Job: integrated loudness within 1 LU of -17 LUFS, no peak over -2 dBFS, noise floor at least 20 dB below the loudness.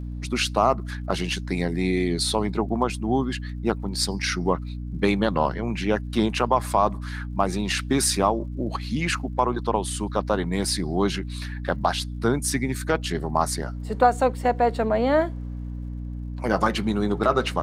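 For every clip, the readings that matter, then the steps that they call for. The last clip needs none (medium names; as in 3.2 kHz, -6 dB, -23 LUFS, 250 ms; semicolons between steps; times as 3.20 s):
tick rate 53 per s; hum 60 Hz; highest harmonic 300 Hz; hum level -30 dBFS; loudness -24.5 LUFS; peak level -5.0 dBFS; loudness target -17.0 LUFS
-> de-click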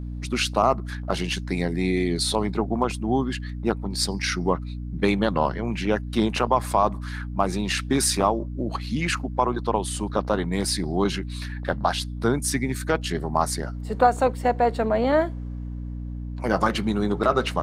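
tick rate 0.40 per s; hum 60 Hz; highest harmonic 300 Hz; hum level -30 dBFS
-> hum notches 60/120/180/240/300 Hz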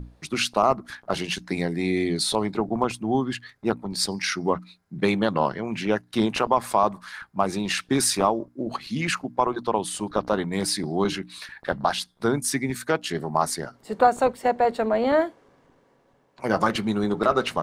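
hum not found; loudness -25.0 LUFS; peak level -5.5 dBFS; loudness target -17.0 LUFS
-> trim +8 dB; peak limiter -2 dBFS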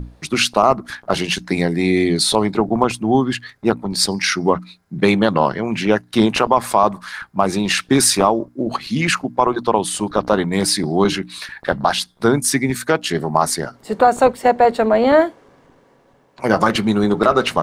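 loudness -17.5 LUFS; peak level -2.0 dBFS; noise floor -54 dBFS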